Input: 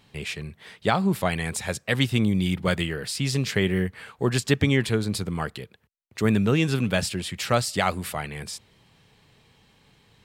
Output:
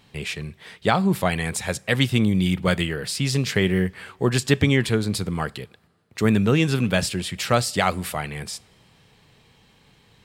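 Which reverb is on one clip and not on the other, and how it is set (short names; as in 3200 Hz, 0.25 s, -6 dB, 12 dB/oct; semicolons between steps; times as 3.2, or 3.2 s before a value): two-slope reverb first 0.32 s, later 2.3 s, from -18 dB, DRR 20 dB; gain +2.5 dB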